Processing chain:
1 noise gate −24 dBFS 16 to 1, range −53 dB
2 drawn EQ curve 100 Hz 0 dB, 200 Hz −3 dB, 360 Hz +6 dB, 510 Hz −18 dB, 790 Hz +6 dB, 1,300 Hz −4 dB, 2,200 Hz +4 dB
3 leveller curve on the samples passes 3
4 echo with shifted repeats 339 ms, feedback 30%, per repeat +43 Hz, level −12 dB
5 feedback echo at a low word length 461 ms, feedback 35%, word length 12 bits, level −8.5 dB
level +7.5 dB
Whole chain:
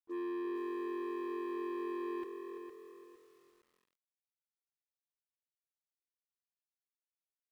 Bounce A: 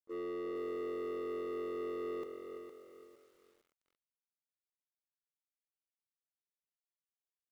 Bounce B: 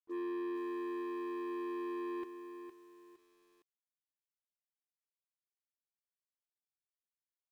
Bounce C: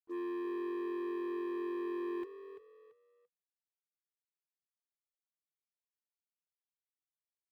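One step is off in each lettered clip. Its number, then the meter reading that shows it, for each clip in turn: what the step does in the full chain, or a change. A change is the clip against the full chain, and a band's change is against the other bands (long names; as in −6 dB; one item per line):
2, change in momentary loudness spread −2 LU
4, change in momentary loudness spread −3 LU
5, 1 kHz band −3.0 dB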